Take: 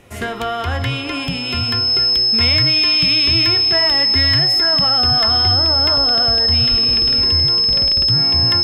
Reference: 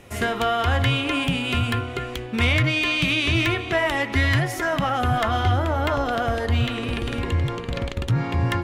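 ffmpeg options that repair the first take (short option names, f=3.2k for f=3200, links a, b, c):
-filter_complex "[0:a]bandreject=f=5.2k:w=30,asplit=3[a][b][c];[a]afade=t=out:st=6.7:d=0.02[d];[b]highpass=f=140:w=0.5412,highpass=f=140:w=1.3066,afade=t=in:st=6.7:d=0.02,afade=t=out:st=6.82:d=0.02[e];[c]afade=t=in:st=6.82:d=0.02[f];[d][e][f]amix=inputs=3:normalize=0"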